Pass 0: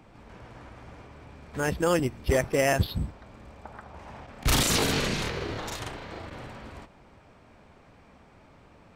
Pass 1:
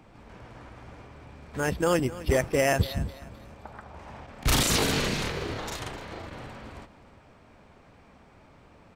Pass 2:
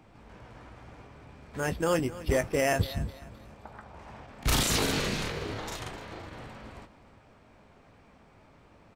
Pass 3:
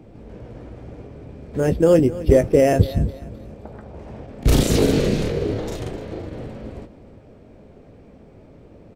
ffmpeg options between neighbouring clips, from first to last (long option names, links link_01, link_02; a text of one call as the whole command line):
ffmpeg -i in.wav -af "aecho=1:1:258|516|774:0.141|0.0494|0.0173" out.wav
ffmpeg -i in.wav -filter_complex "[0:a]asplit=2[link_01][link_02];[link_02]adelay=19,volume=-10.5dB[link_03];[link_01][link_03]amix=inputs=2:normalize=0,volume=-3dB" out.wav
ffmpeg -i in.wav -af "lowshelf=frequency=700:width_type=q:width=1.5:gain=11,volume=1dB" out.wav